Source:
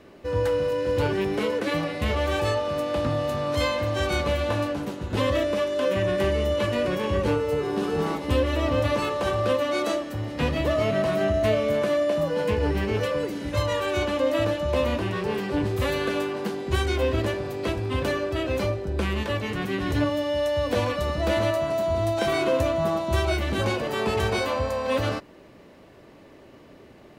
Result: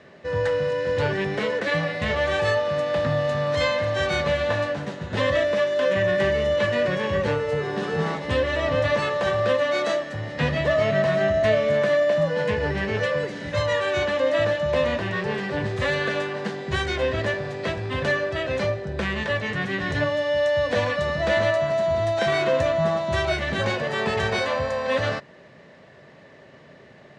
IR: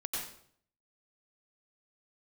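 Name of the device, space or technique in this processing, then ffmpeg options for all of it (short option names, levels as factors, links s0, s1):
car door speaker: -af "highpass=93,equalizer=f=150:t=q:w=4:g=7,equalizer=f=310:t=q:w=4:g=-9,equalizer=f=610:t=q:w=4:g=4,equalizer=f=1800:t=q:w=4:g=10,equalizer=f=3700:t=q:w=4:g=3,lowpass=f=7600:w=0.5412,lowpass=f=7600:w=1.3066"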